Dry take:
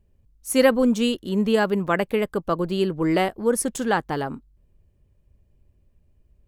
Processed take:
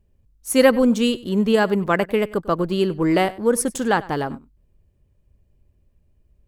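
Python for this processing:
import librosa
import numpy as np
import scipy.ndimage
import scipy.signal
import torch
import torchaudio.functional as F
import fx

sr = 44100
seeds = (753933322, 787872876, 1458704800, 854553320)

p1 = fx.backlash(x, sr, play_db=-32.0)
p2 = x + (p1 * librosa.db_to_amplitude(-9.0))
y = p2 + 10.0 ** (-20.0 / 20.0) * np.pad(p2, (int(97 * sr / 1000.0), 0))[:len(p2)]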